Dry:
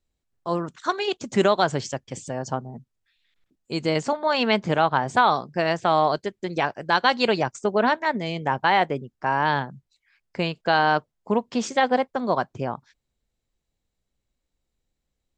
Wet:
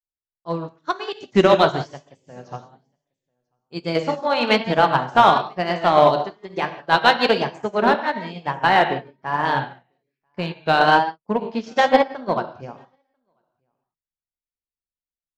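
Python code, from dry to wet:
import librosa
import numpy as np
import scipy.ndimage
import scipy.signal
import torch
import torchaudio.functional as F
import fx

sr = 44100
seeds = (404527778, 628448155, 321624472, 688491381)

p1 = scipy.signal.sosfilt(scipy.signal.butter(4, 5900.0, 'lowpass', fs=sr, output='sos'), x)
p2 = fx.rev_gated(p1, sr, seeds[0], gate_ms=210, shape='flat', drr_db=2.5)
p3 = fx.vibrato(p2, sr, rate_hz=1.1, depth_cents=89.0)
p4 = np.clip(p3, -10.0 ** (-14.0 / 20.0), 10.0 ** (-14.0 / 20.0))
p5 = p3 + (p4 * 10.0 ** (-5.0 / 20.0))
p6 = p5 + 10.0 ** (-20.5 / 20.0) * np.pad(p5, (int(992 * sr / 1000.0), 0))[:len(p5)]
p7 = fx.upward_expand(p6, sr, threshold_db=-34.0, expansion=2.5)
y = p7 * 10.0 ** (3.0 / 20.0)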